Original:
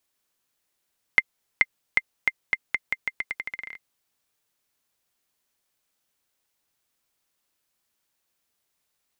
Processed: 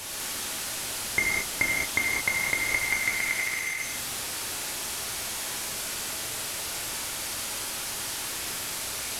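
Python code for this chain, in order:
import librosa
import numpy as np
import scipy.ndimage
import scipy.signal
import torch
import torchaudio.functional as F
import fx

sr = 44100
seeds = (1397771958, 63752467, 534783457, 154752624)

y = fx.delta_mod(x, sr, bps=64000, step_db=-31.5)
y = fx.rev_gated(y, sr, seeds[0], gate_ms=240, shape='flat', drr_db=-4.5)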